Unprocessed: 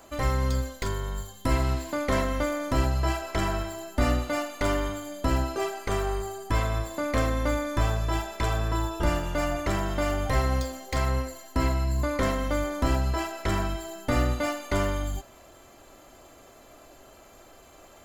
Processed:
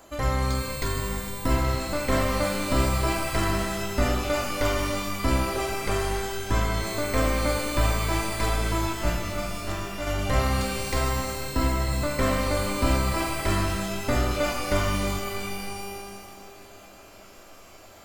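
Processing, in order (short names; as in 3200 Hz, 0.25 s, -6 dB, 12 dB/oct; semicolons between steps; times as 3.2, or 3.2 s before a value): 8.93–10.07 expander -19 dBFS; shimmer reverb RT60 2.2 s, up +12 st, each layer -2 dB, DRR 4.5 dB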